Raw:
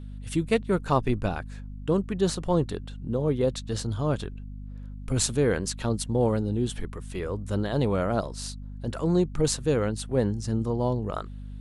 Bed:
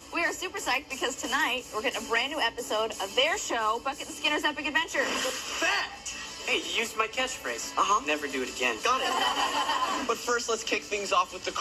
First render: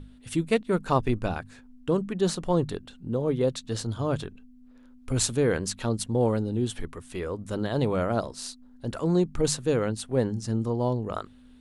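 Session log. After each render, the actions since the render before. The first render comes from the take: hum notches 50/100/150/200 Hz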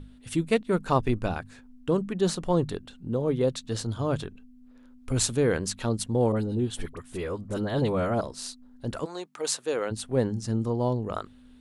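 6.32–8.21 s: phase dispersion highs, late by 43 ms, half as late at 1.4 kHz; 9.04–9.90 s: high-pass 920 Hz -> 380 Hz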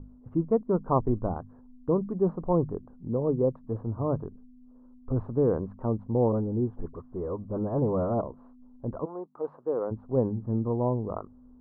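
local Wiener filter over 9 samples; Chebyshev low-pass 1.1 kHz, order 4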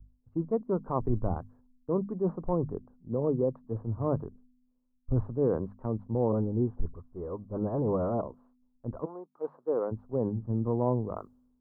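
peak limiter -20.5 dBFS, peak gain reduction 8.5 dB; three bands expanded up and down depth 100%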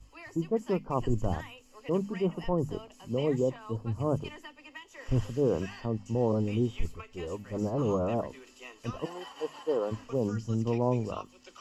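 add bed -20 dB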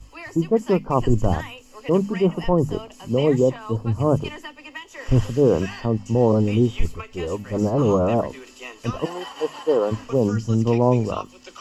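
trim +10 dB

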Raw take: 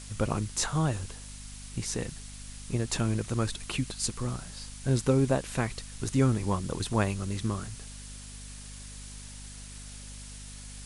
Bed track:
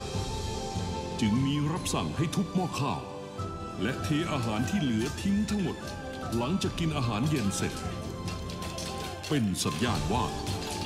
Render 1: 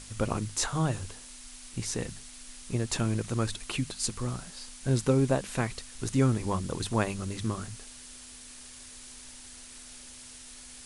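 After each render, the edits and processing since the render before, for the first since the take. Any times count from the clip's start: hum notches 50/100/150/200 Hz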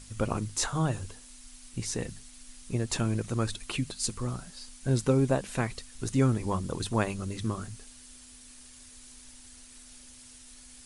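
noise reduction 6 dB, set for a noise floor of -48 dBFS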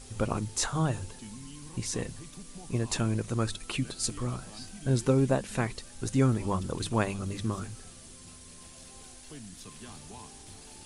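add bed track -19 dB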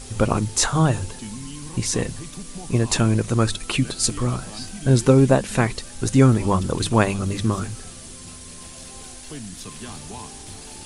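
trim +10 dB

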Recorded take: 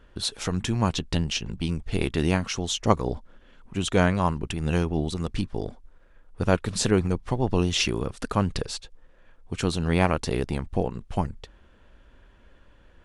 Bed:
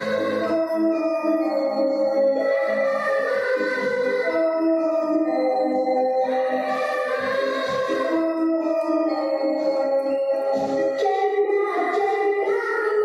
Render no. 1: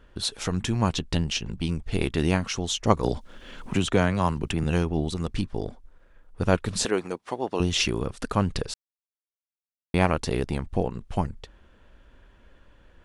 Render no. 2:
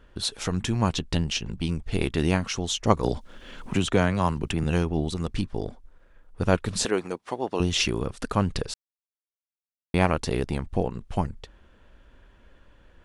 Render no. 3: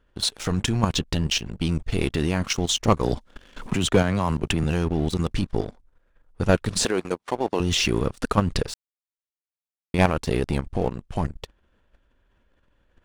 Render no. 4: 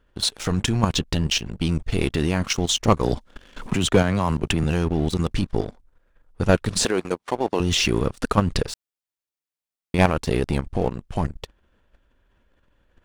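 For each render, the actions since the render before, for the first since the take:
3.03–4.64 s: three bands compressed up and down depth 70%; 6.85–7.60 s: high-pass 360 Hz; 8.74–9.94 s: mute
no audible change
level held to a coarse grid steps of 10 dB; waveshaping leveller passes 2
trim +1.5 dB

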